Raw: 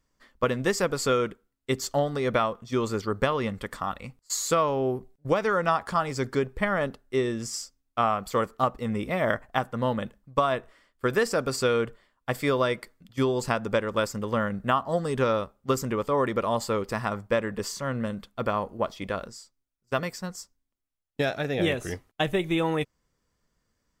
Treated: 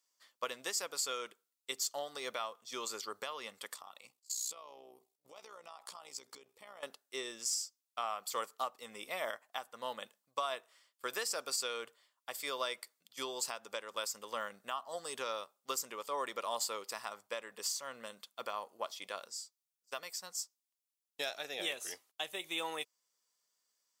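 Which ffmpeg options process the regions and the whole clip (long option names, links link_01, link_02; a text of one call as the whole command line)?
ffmpeg -i in.wav -filter_complex "[0:a]asettb=1/sr,asplit=3[link_01][link_02][link_03];[link_01]atrim=end=3.744[link_04];[link_02]atrim=start=3.74:end=6.83,asetpts=PTS-STARTPTS,afade=type=in:duration=0.004:curve=qsin,afade=type=out:start_time=3.086:duration=0.004:curve=qsin,equalizer=frequency=1600:width_type=o:width=0.4:gain=-10.5,acompressor=threshold=-33dB:ratio=12:attack=3.2:release=140:knee=1:detection=peak,tremolo=f=61:d=0.667[link_05];[link_03]atrim=start=6.826[link_06];[link_04][link_05]acrossfade=duration=0.004:curve1=hsin:curve2=qsin[link_07];[link_07][link_06]acrossfade=duration=0.004:curve1=qsin:curve2=hsin,highpass=1300,equalizer=frequency=1700:width=0.84:gain=-13,alimiter=level_in=3dB:limit=-24dB:level=0:latency=1:release=380,volume=-3dB,volume=3.5dB" out.wav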